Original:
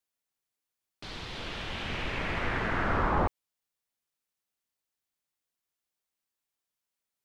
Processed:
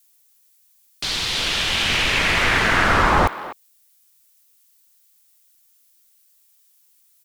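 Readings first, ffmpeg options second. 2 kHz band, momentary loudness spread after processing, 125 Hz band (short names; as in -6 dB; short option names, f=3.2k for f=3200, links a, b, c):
+15.5 dB, 10 LU, +8.0 dB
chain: -filter_complex "[0:a]crystalizer=i=7.5:c=0,asplit=2[a][b];[b]adelay=250,highpass=300,lowpass=3.4k,asoftclip=type=hard:threshold=-20.5dB,volume=-14dB[c];[a][c]amix=inputs=2:normalize=0,volume=8dB"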